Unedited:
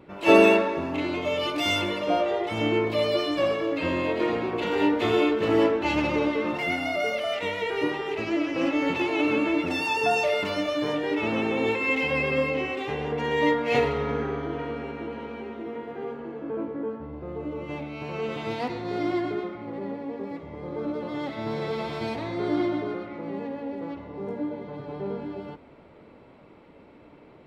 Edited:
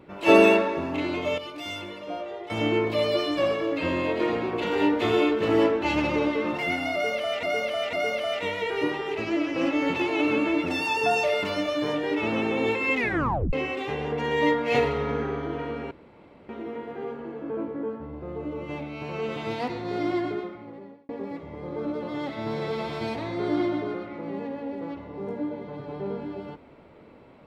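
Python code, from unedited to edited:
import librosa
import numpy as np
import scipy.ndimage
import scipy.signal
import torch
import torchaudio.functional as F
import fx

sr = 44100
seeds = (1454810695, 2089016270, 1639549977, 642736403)

y = fx.edit(x, sr, fx.clip_gain(start_s=1.38, length_s=1.12, db=-10.0),
    fx.repeat(start_s=6.93, length_s=0.5, count=3),
    fx.tape_stop(start_s=11.96, length_s=0.57),
    fx.room_tone_fill(start_s=14.91, length_s=0.58),
    fx.fade_out_span(start_s=19.27, length_s=0.82), tone=tone)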